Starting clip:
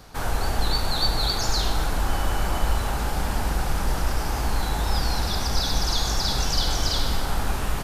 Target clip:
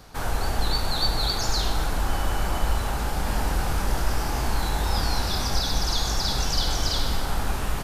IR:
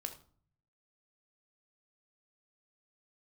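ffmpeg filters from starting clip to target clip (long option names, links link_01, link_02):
-filter_complex "[0:a]asettb=1/sr,asplit=3[link_01][link_02][link_03];[link_01]atrim=end=3.244[link_04];[link_02]atrim=start=3.24:end=5.58,asetpts=PTS-STARTPTS,afade=type=in:duration=0.004:curve=qsin,afade=type=out:start_time=2.336:duration=0.004:curve=qsin,asplit=2[link_05][link_06];[link_06]adelay=24,volume=-5dB[link_07];[link_05][link_07]amix=inputs=2:normalize=0,atrim=end_sample=103194[link_08];[link_03]atrim=start=5.576[link_09];[link_04][link_08]acrossfade=duration=0.004:curve1=hsin:curve2=qsin[link_10];[link_10][link_09]acrossfade=duration=0.004:curve1=qsin:curve2=hsin,volume=-1dB"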